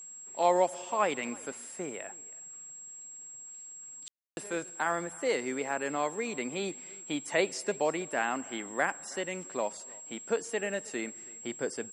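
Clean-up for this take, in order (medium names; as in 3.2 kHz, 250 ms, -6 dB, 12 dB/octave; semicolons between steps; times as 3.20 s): band-stop 7.6 kHz, Q 30; room tone fill 4.08–4.37 s; inverse comb 321 ms -23.5 dB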